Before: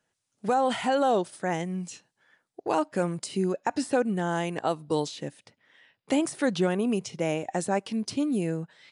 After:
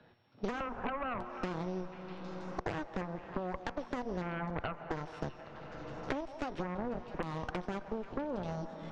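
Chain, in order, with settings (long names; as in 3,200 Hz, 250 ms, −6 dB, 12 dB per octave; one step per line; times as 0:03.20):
samples sorted by size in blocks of 8 samples
head-to-tape spacing loss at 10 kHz 44 dB
auto-filter low-pass square 0.83 Hz 700–3,900 Hz
tuned comb filter 120 Hz, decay 0.53 s, harmonics all, mix 60%
downward compressor 8 to 1, threshold −39 dBFS, peak gain reduction 15.5 dB
harmonic generator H 3 −18 dB, 5 −26 dB, 6 −7 dB, 7 −27 dB, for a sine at −29 dBFS
on a send: echo through a band-pass that steps 162 ms, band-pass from 760 Hz, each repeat 0.7 octaves, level −12 dB
on the sum: comb and all-pass reverb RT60 3.9 s, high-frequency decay 0.7×, pre-delay 85 ms, DRR 16.5 dB
multiband upward and downward compressor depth 100%
level +1.5 dB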